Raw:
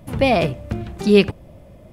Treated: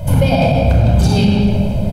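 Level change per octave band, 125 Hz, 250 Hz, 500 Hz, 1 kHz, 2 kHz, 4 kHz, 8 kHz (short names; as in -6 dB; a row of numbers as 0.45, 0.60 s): +14.5 dB, +6.0 dB, +0.5 dB, +4.5 dB, +0.5 dB, +3.0 dB, n/a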